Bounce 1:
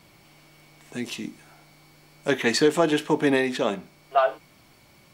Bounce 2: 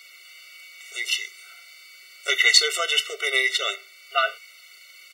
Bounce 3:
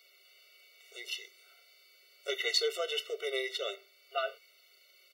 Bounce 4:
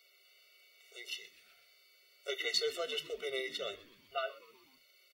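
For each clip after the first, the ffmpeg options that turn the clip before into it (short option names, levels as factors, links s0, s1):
-af "firequalizer=gain_entry='entry(160,0);entry(470,-14);entry(1900,13);entry(8900,8)':delay=0.05:min_phase=1,afftfilt=real='re*eq(mod(floor(b*sr/1024/380),2),1)':imag='im*eq(mod(floor(b*sr/1024/380),2),1)':win_size=1024:overlap=0.75,volume=1.33"
-af "equalizer=f=500:t=o:w=1:g=9,equalizer=f=1000:t=o:w=1:g=-6,equalizer=f=2000:t=o:w=1:g=-8,equalizer=f=8000:t=o:w=1:g=-11,volume=0.376"
-filter_complex "[0:a]asplit=5[s0][s1][s2][s3][s4];[s1]adelay=125,afreqshift=-100,volume=0.106[s5];[s2]adelay=250,afreqshift=-200,volume=0.0569[s6];[s3]adelay=375,afreqshift=-300,volume=0.0309[s7];[s4]adelay=500,afreqshift=-400,volume=0.0166[s8];[s0][s5][s6][s7][s8]amix=inputs=5:normalize=0,volume=0.668"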